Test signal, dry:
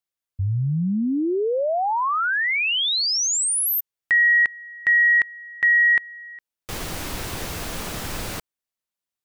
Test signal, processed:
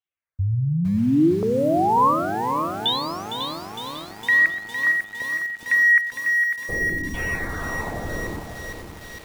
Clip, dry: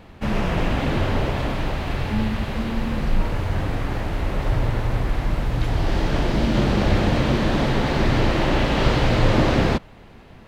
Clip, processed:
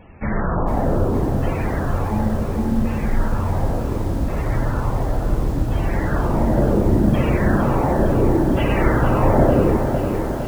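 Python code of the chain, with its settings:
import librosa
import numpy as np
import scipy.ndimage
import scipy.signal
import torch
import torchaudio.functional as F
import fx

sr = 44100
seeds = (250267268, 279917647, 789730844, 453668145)

y = fx.high_shelf(x, sr, hz=4100.0, db=-9.5)
y = y + 10.0 ** (-14.0 / 20.0) * np.pad(y, (int(124 * sr / 1000.0), 0))[:len(y)]
y = fx.filter_lfo_lowpass(y, sr, shape='saw_down', hz=0.7, low_hz=240.0, high_hz=3500.0, q=2.2)
y = fx.echo_feedback(y, sr, ms=548, feedback_pct=36, wet_db=-9.0)
y = fx.spec_topn(y, sr, count=64)
y = fx.peak_eq(y, sr, hz=77.0, db=3.0, octaves=0.45)
y = fx.echo_crushed(y, sr, ms=458, feedback_pct=80, bits=6, wet_db=-10.0)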